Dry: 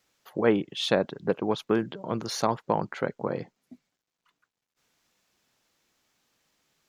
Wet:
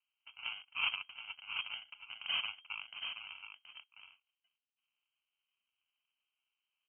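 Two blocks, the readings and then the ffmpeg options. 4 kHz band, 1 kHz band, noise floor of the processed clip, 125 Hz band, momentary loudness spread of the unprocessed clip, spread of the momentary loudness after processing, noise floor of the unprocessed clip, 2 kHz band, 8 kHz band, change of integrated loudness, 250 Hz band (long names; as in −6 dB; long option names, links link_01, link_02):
−2.0 dB, −18.5 dB, below −85 dBFS, below −35 dB, 8 LU, 19 LU, below −85 dBFS, −2.5 dB, below −35 dB, −11.0 dB, below −40 dB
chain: -af "agate=range=-16dB:threshold=-57dB:ratio=16:detection=peak,aderivative,acrusher=samples=32:mix=1:aa=0.000001,aeval=exprs='0.0668*(cos(1*acos(clip(val(0)/0.0668,-1,1)))-cos(1*PI/2))+0.00237*(cos(8*acos(clip(val(0)/0.0668,-1,1)))-cos(8*PI/2))':channel_layout=same,aecho=1:1:725:0.398,lowpass=frequency=2700:width_type=q:width=0.5098,lowpass=frequency=2700:width_type=q:width=0.6013,lowpass=frequency=2700:width_type=q:width=0.9,lowpass=frequency=2700:width_type=q:width=2.563,afreqshift=-3200,volume=2dB"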